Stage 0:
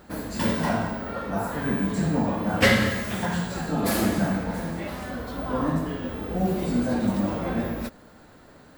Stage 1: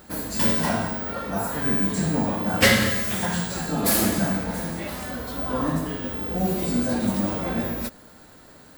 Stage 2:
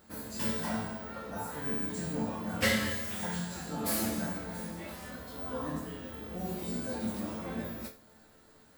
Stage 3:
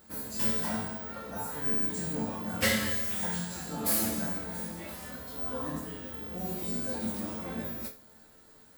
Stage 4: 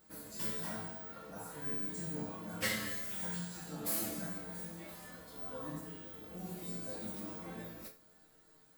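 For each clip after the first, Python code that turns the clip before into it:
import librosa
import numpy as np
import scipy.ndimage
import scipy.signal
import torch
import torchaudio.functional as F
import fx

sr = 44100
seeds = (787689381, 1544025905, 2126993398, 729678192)

y1 = fx.high_shelf(x, sr, hz=4400.0, db=11.0)
y2 = fx.resonator_bank(y1, sr, root=38, chord='minor', decay_s=0.3)
y3 = fx.high_shelf(y2, sr, hz=7000.0, db=7.0)
y4 = y3 + 0.58 * np.pad(y3, (int(6.3 * sr / 1000.0), 0))[:len(y3)]
y4 = y4 * librosa.db_to_amplitude(-9.0)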